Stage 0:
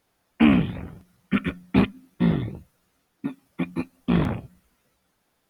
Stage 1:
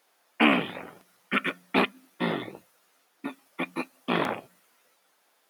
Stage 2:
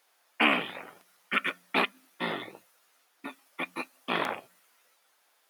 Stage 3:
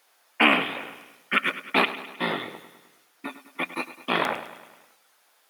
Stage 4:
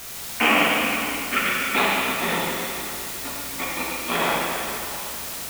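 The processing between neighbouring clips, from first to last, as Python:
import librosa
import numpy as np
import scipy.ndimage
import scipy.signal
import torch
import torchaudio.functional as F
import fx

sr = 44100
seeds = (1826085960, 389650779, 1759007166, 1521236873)

y1 = scipy.signal.sosfilt(scipy.signal.butter(2, 500.0, 'highpass', fs=sr, output='sos'), x)
y1 = y1 * 10.0 ** (5.0 / 20.0)
y2 = fx.low_shelf(y1, sr, hz=430.0, db=-11.0)
y3 = fx.echo_feedback(y2, sr, ms=103, feedback_pct=58, wet_db=-14.0)
y3 = y3 * 10.0 ** (5.0 / 20.0)
y4 = fx.add_hum(y3, sr, base_hz=60, snr_db=31)
y4 = fx.quant_dither(y4, sr, seeds[0], bits=6, dither='triangular')
y4 = fx.rev_plate(y4, sr, seeds[1], rt60_s=2.9, hf_ratio=0.95, predelay_ms=0, drr_db=-5.5)
y4 = y4 * 10.0 ** (-3.0 / 20.0)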